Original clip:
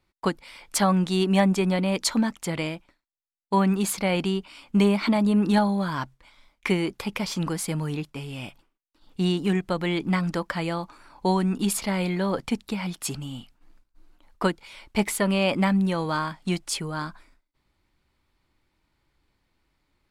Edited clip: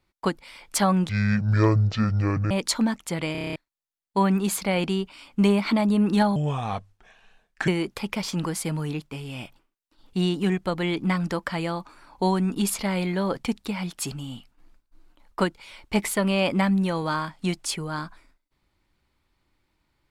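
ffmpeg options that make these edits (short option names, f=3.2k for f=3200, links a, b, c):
-filter_complex "[0:a]asplit=13[a][b][c][d][e][f][g][h][i][j][k][l][m];[a]atrim=end=1.094[n];[b]atrim=start=1.09:end=1.87,asetpts=PTS-STARTPTS,asetrate=24255,aresample=44100[o];[c]atrim=start=1.866:end=2.712[p];[d]atrim=start=2.678:end=2.712[q];[e]atrim=start=2.678:end=2.712[r];[f]atrim=start=2.678:end=2.712[s];[g]atrim=start=2.678:end=2.712[t];[h]atrim=start=2.678:end=2.712[u];[i]atrim=start=2.678:end=2.712[v];[j]atrim=start=2.678:end=2.712[w];[k]atrim=start=2.918:end=5.724[x];[l]atrim=start=5.72:end=6.71,asetpts=PTS-STARTPTS,asetrate=33075,aresample=44100[y];[m]atrim=start=6.706[z];[n][o]acrossfade=d=0.004:c1=hsin:c2=hsin[aa];[aa][p]acrossfade=d=0.004:c1=hsin:c2=hsin[ab];[ab][q]acrossfade=d=0.004:c1=hsin:c2=hsin[ac];[ac][r]acrossfade=d=0.004:c1=hsin:c2=hsin[ad];[ad][s]acrossfade=d=0.004:c1=hsin:c2=hsin[ae];[ae][t]acrossfade=d=0.004:c1=hsin:c2=hsin[af];[af][u]acrossfade=d=0.004:c1=hsin:c2=hsin[ag];[ag][v]acrossfade=d=0.004:c1=hsin:c2=hsin[ah];[ah][w]acrossfade=d=0.004:c1=hsin:c2=hsin[ai];[ai][x]acrossfade=d=0.004:c1=hsin:c2=hsin[aj];[aj][y]acrossfade=d=0.004:c1=hsin:c2=hsin[ak];[ak][z]acrossfade=d=0.004:c1=hsin:c2=hsin"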